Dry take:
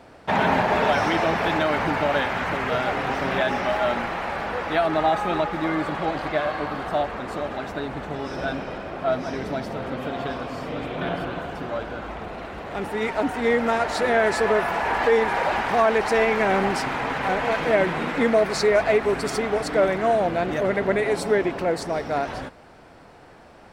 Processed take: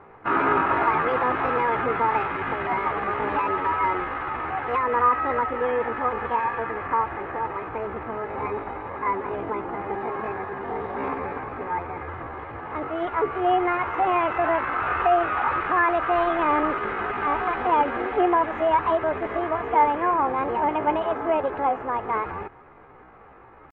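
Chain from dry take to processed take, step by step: low-pass 1.2 kHz 24 dB/octave; comb 3.7 ms, depth 34%; pitch shift +7.5 st

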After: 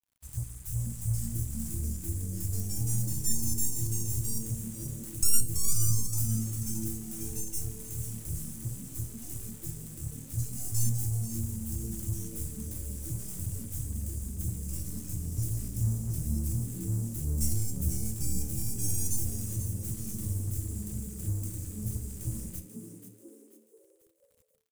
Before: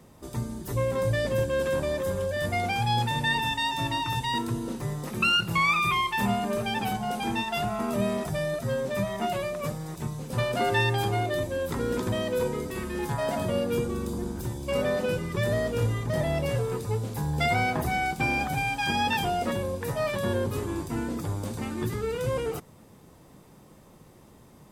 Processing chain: tracing distortion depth 0.17 ms; inverse Chebyshev band-stop 220–3700 Hz, stop band 40 dB; treble shelf 5.3 kHz +4.5 dB; in parallel at -6 dB: saturation -25.5 dBFS, distortion -14 dB; on the sum: feedback comb 80 Hz, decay 0.35 s, harmonics all, mix 70%; crossover distortion -55 dBFS; on a send: frequency-shifting echo 487 ms, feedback 40%, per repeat +110 Hz, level -10 dB; on the sum: trim +7 dB

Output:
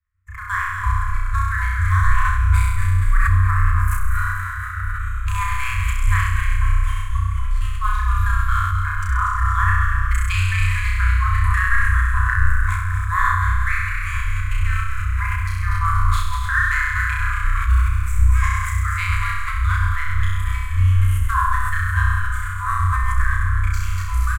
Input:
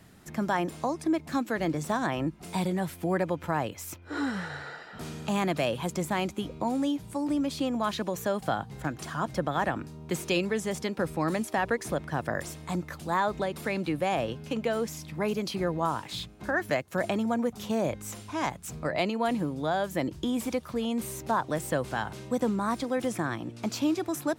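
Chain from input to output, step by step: local Wiener filter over 9 samples; transient shaper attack +5 dB, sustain -12 dB; frequency-shifting echo 240 ms, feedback 60%, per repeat -79 Hz, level -6 dB; FFT band-reject 100–1000 Hz; high-order bell 4 kHz -11.5 dB 1.3 oct; de-hum 49.45 Hz, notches 31; expander -44 dBFS; bass shelf 230 Hz +11.5 dB; flutter echo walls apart 5.6 m, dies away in 1.3 s; decay stretcher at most 32 dB/s; trim +6.5 dB

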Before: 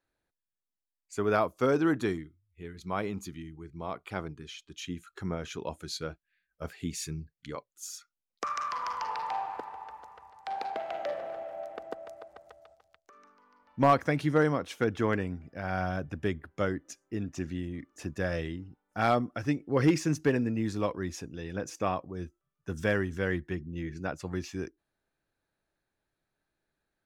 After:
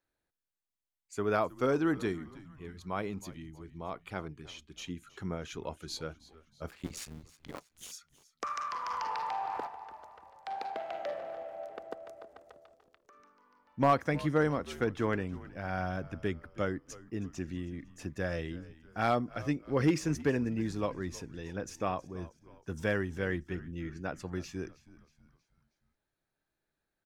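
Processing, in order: 6.70–7.92 s: cycle switcher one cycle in 2, muted; frequency-shifting echo 318 ms, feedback 47%, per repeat -79 Hz, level -19 dB; 8.90–9.67 s: level flattener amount 70%; trim -3 dB

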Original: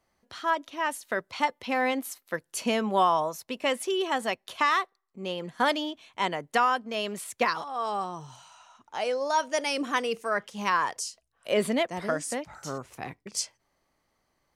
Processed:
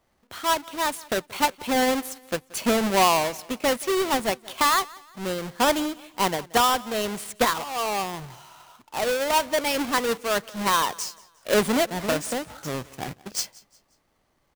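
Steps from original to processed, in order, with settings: square wave that keeps the level; on a send: feedback delay 179 ms, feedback 38%, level -22.5 dB

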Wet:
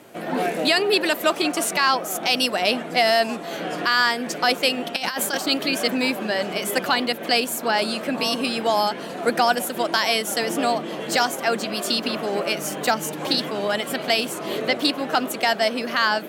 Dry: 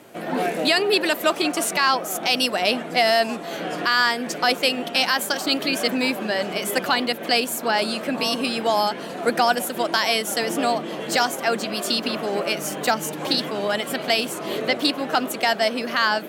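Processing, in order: 4.96–5.38 s: compressor with a negative ratio -24 dBFS, ratio -0.5

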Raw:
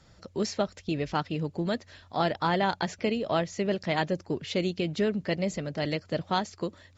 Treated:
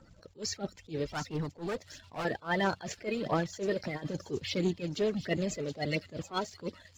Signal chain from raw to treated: coarse spectral quantiser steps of 30 dB; in parallel at +3 dB: level held to a coarse grid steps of 21 dB; 1.07–2.25 s: on the sum: hard clipper -28 dBFS, distortion -15 dB; phaser 1.5 Hz, delay 2.7 ms, feedback 40%; 3.72–4.31 s: compressor with a negative ratio -29 dBFS, ratio -0.5; on a send: feedback echo behind a high-pass 725 ms, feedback 60%, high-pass 3.9 kHz, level -9.5 dB; on the sum: waveshaping leveller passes 1; attacks held to a fixed rise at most 280 dB/s; trim -8 dB

